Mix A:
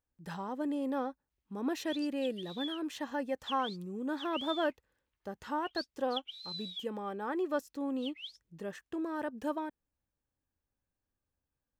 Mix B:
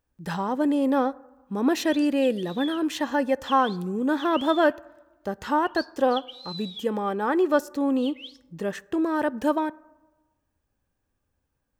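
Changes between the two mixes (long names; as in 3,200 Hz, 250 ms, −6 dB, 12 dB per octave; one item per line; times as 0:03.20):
speech +11.0 dB
reverb: on, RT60 1.2 s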